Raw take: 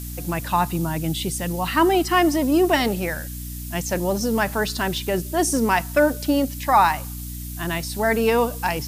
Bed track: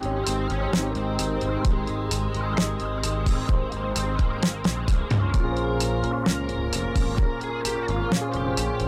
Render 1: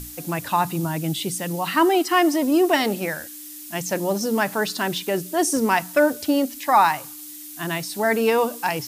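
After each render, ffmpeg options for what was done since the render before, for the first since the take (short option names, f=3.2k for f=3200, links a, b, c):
-af "bandreject=f=60:t=h:w=6,bandreject=f=120:t=h:w=6,bandreject=f=180:t=h:w=6,bandreject=f=240:t=h:w=6"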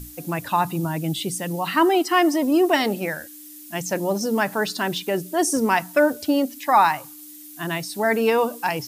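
-af "afftdn=nr=6:nf=-39"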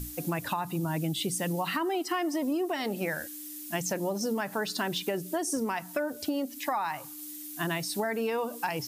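-af "alimiter=limit=-15.5dB:level=0:latency=1:release=394,acompressor=threshold=-27dB:ratio=6"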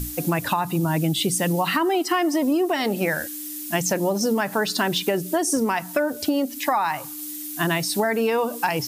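-af "volume=8.5dB"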